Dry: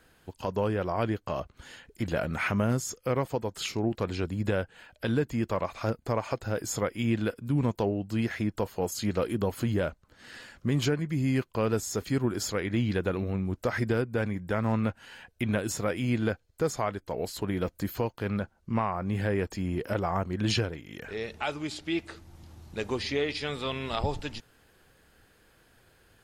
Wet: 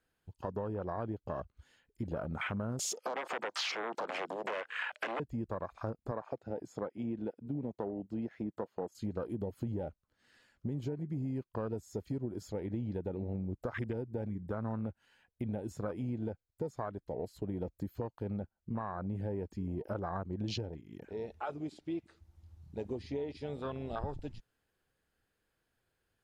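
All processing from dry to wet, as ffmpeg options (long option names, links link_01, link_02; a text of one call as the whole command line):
ffmpeg -i in.wav -filter_complex "[0:a]asettb=1/sr,asplit=3[link_01][link_02][link_03];[link_01]atrim=end=2.794[link_04];[link_02]atrim=start=2.79:end=5.2,asetpts=PTS-STARTPTS,afade=type=in:duration=0.004:curve=qsin,afade=type=out:start_time=2.406:duration=0.004:curve=qsin,acompressor=threshold=-36dB:ratio=6:attack=3.2:release=140:knee=1:detection=peak,aeval=exprs='0.1*sin(PI/2*8.91*val(0)/0.1)':channel_layout=same,highpass=560,lowpass=7600[link_05];[link_03]atrim=start=5.196[link_06];[link_04][link_05]acrossfade=duration=0.004:curve1=hsin:curve2=qsin[link_07];[link_07][link_06]acrossfade=duration=0.004:curve1=qsin:curve2=hsin,asettb=1/sr,asplit=3[link_08][link_09][link_10];[link_08]atrim=end=6.114[link_11];[link_09]atrim=start=6.11:end=8.95,asetpts=PTS-STARTPTS,afade=type=in:duration=0.004:curve=qsin,afade=type=out:start_time=2.836:duration=0.004:curve=qsin,highpass=180,aemphasis=mode=reproduction:type=50kf[link_12];[link_10]atrim=start=8.946[link_13];[link_11][link_12]acrossfade=duration=0.004:curve1=hsin:curve2=qsin[link_14];[link_14][link_13]acrossfade=duration=0.004:curve1=qsin:curve2=hsin,afwtdn=0.0282,acompressor=threshold=-30dB:ratio=6,volume=-3.5dB" out.wav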